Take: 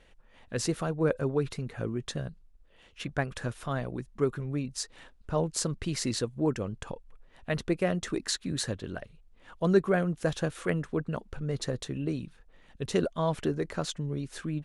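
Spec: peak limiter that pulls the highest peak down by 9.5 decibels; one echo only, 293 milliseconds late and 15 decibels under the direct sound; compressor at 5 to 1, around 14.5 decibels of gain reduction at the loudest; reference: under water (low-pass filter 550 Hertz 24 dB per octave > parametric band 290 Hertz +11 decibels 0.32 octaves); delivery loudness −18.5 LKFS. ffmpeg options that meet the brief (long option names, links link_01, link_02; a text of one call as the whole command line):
ffmpeg -i in.wav -af "acompressor=threshold=-34dB:ratio=5,alimiter=level_in=5dB:limit=-24dB:level=0:latency=1,volume=-5dB,lowpass=frequency=550:width=0.5412,lowpass=frequency=550:width=1.3066,equalizer=frequency=290:width_type=o:width=0.32:gain=11,aecho=1:1:293:0.178,volume=20.5dB" out.wav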